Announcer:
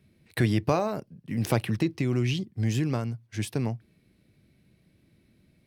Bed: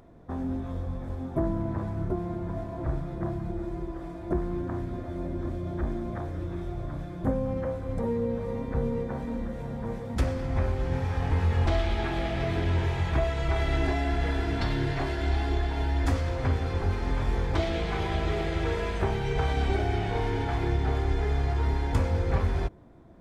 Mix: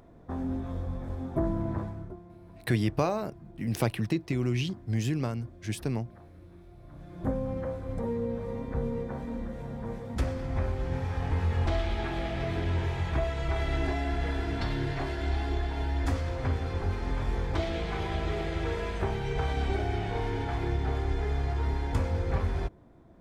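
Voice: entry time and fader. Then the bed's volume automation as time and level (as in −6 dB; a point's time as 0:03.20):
2.30 s, −2.5 dB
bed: 0:01.79 −1 dB
0:02.23 −17.5 dB
0:06.79 −17.5 dB
0:07.26 −3 dB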